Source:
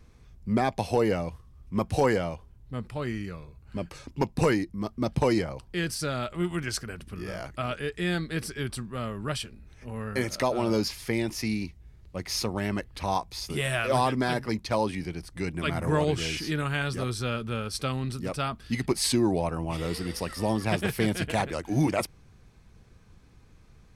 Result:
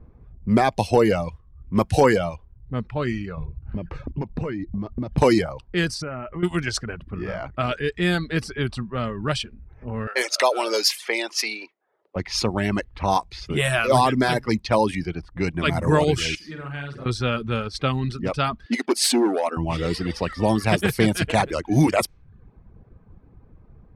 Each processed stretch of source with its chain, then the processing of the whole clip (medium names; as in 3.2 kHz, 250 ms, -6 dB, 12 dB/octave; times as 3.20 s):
3.37–5.18 s: bass shelf 250 Hz +10.5 dB + compression 16:1, threshold -30 dBFS
6.02–6.43 s: brick-wall FIR low-pass 3.1 kHz + compression 12:1, threshold -33 dBFS
10.07–12.16 s: high-pass 430 Hz 24 dB/octave + treble shelf 2.6 kHz +7.5 dB
16.35–17.06 s: pre-emphasis filter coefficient 0.8 + flutter echo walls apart 8.5 m, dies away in 0.68 s
18.66–19.57 s: overload inside the chain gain 21 dB + brick-wall FIR high-pass 200 Hz
whole clip: reverb removal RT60 0.56 s; level-controlled noise filter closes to 790 Hz, open at -24.5 dBFS; trim +7.5 dB